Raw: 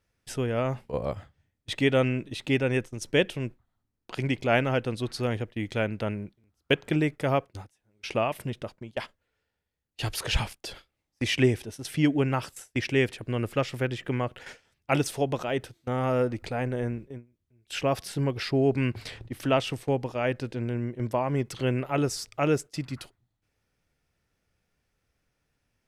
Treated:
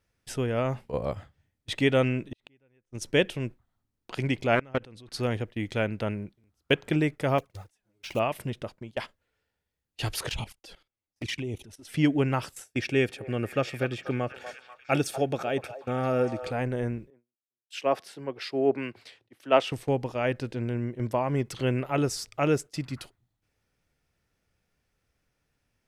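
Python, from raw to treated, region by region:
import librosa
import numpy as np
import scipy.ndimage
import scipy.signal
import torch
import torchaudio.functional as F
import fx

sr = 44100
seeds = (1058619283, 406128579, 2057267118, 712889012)

y = fx.chain(x, sr, fx.high_shelf(hz=6000.0, db=-10.0),
    fx.gate_flip(shuts_db=-26.0, range_db=-40), at=(2.32, 2.95))
y = fx.chain(y, sr, fx.high_shelf(hz=10000.0, db=-3.0),
    fx.level_steps(step_db=24),
    fx.doppler_dist(depth_ms=0.36), at=(4.55, 5.12))
y = fx.chain(y, sr, fx.block_float(bits=5),
    fx.env_flanger(rest_ms=8.1, full_db=-29.5), at=(7.38, 8.2))
y = fx.chain(y, sr, fx.env_flanger(rest_ms=11.0, full_db=-22.0),
    fx.level_steps(step_db=16), at=(10.29, 11.94))
y = fx.chain(y, sr, fx.notch_comb(f0_hz=1000.0),
    fx.echo_stepped(ms=243, hz=750.0, octaves=0.7, feedback_pct=70, wet_db=-8.0), at=(12.64, 16.51))
y = fx.chain(y, sr, fx.highpass(hz=330.0, slope=12),
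    fx.high_shelf(hz=4000.0, db=-9.0),
    fx.band_widen(depth_pct=100), at=(17.1, 19.72))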